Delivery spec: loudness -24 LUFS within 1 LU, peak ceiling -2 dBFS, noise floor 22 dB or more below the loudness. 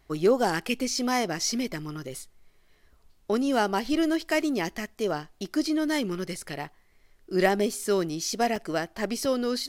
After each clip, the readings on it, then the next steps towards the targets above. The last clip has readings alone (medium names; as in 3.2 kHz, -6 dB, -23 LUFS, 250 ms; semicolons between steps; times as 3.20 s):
dropouts 2; longest dropout 2.3 ms; loudness -27.5 LUFS; peak level -8.5 dBFS; loudness target -24.0 LUFS
-> interpolate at 8.56/9.25 s, 2.3 ms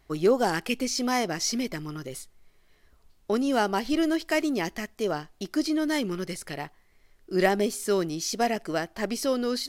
dropouts 0; loudness -27.5 LUFS; peak level -8.5 dBFS; loudness target -24.0 LUFS
-> trim +3.5 dB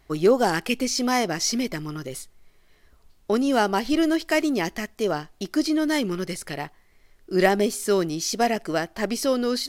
loudness -24.0 LUFS; peak level -5.0 dBFS; noise floor -58 dBFS